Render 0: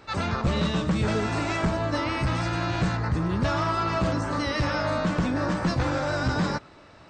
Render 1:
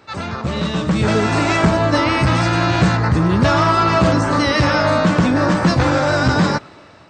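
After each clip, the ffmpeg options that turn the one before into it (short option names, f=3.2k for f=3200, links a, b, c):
-af "highpass=79,dynaudnorm=f=370:g=5:m=10dB,volume=2dB"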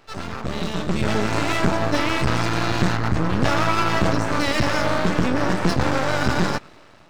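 -af "aeval=exprs='max(val(0),0)':c=same,volume=-1.5dB"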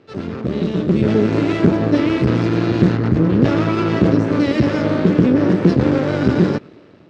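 -af "highpass=110,lowpass=4.3k,lowshelf=f=580:t=q:w=1.5:g=10.5,volume=-2.5dB"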